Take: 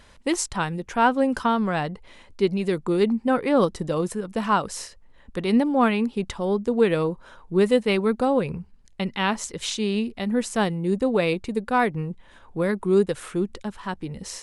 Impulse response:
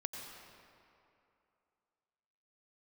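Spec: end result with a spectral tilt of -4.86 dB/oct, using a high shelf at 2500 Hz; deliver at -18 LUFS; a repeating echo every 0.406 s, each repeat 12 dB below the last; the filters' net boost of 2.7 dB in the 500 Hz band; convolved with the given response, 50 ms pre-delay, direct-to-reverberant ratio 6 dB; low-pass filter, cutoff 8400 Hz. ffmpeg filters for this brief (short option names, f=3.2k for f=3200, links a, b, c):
-filter_complex "[0:a]lowpass=8.4k,equalizer=f=500:t=o:g=3,highshelf=f=2.5k:g=5.5,aecho=1:1:406|812|1218:0.251|0.0628|0.0157,asplit=2[a][b];[1:a]atrim=start_sample=2205,adelay=50[c];[b][c]afir=irnorm=-1:irlink=0,volume=-5.5dB[d];[a][d]amix=inputs=2:normalize=0,volume=3dB"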